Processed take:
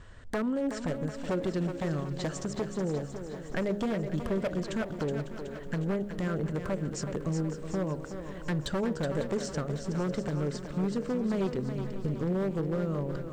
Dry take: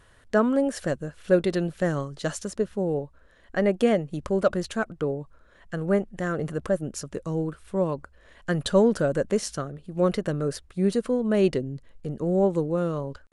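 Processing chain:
Chebyshev low-pass filter 8,500 Hz, order 8
low-shelf EQ 320 Hz +9.5 dB
hum removal 68.03 Hz, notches 14
downward compressor 3 to 1, threshold −32 dBFS, peak gain reduction 15.5 dB
wave folding −25 dBFS
feedback echo with a high-pass in the loop 372 ms, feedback 55%, high-pass 230 Hz, level −7.5 dB
feedback echo at a low word length 550 ms, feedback 55%, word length 10 bits, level −14 dB
level +1.5 dB

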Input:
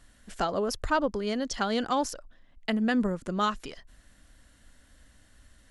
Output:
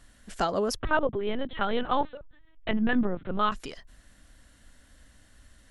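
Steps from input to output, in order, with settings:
0:00.79–0:03.52: linear-prediction vocoder at 8 kHz pitch kept
level +1.5 dB

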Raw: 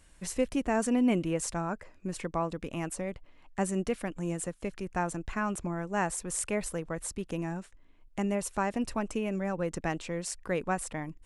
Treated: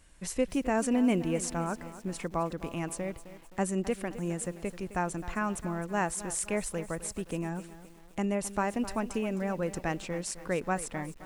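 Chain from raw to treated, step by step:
feedback echo at a low word length 261 ms, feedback 55%, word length 8 bits, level −14 dB

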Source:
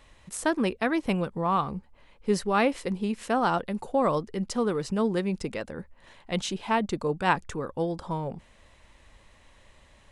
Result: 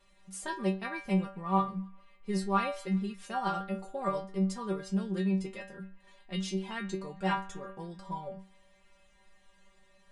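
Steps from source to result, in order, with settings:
stiff-string resonator 190 Hz, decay 0.35 s, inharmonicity 0.002
on a send: feedback echo with a band-pass in the loop 135 ms, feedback 71%, band-pass 2,000 Hz, level −23.5 dB
on the sum: level +6 dB

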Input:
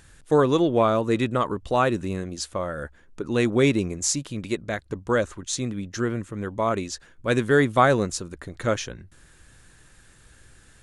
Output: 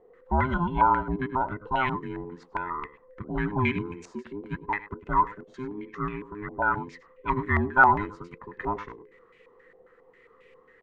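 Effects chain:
frequency inversion band by band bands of 500 Hz
single-tap delay 101 ms −15 dB
low-pass on a step sequencer 7.4 Hz 730–2,500 Hz
level −7.5 dB

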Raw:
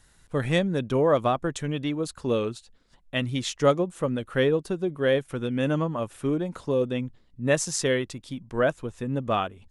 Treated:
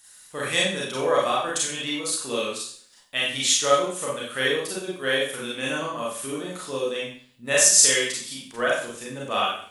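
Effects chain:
spectral tilt +4.5 dB per octave
four-comb reverb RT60 0.51 s, combs from 30 ms, DRR −5.5 dB
level −4 dB

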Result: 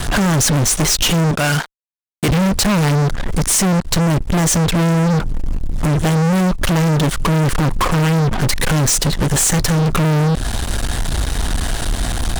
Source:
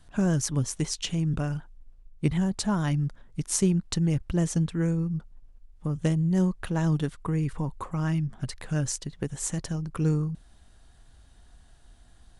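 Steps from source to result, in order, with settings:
0:01.31–0:02.29: high-pass filter 1,400 Hz 6 dB per octave
downward compressor 3 to 1, threshold −39 dBFS, peak gain reduction 15.5 dB
fuzz pedal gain 56 dB, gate −60 dBFS

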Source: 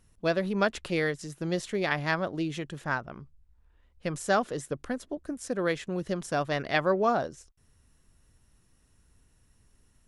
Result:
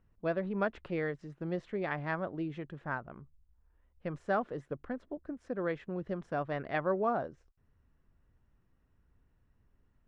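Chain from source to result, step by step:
low-pass filter 1,800 Hz 12 dB per octave
level −5.5 dB

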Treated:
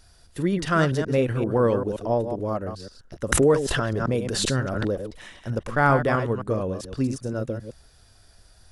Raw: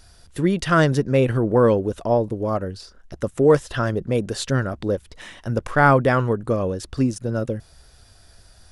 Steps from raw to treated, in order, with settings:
delay that plays each chunk backwards 131 ms, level −8 dB
0:03.32–0:05.35: background raised ahead of every attack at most 22 dB per second
level −4.5 dB

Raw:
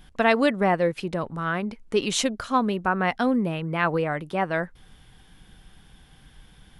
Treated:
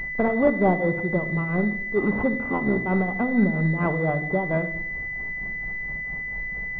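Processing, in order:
0:02.32–0:02.84: sub-harmonics by changed cycles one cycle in 3, muted
amplitude tremolo 4.4 Hz, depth 79%
power curve on the samples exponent 0.7
rectangular room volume 2,000 cubic metres, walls furnished, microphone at 1.2 metres
switching amplifier with a slow clock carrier 2,000 Hz

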